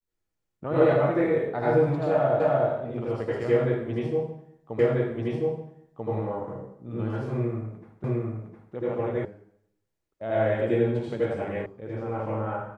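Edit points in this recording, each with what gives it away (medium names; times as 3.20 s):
2.40 s: repeat of the last 0.3 s
4.79 s: repeat of the last 1.29 s
8.04 s: repeat of the last 0.71 s
9.25 s: sound stops dead
11.66 s: sound stops dead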